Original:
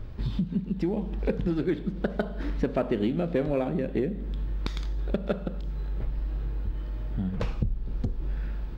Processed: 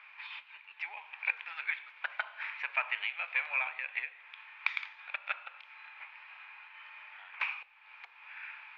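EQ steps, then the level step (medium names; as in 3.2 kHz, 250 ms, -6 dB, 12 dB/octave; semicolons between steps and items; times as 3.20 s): elliptic high-pass 900 Hz, stop band 70 dB; resonant low-pass 2.4 kHz, resonance Q 8.2; 0.0 dB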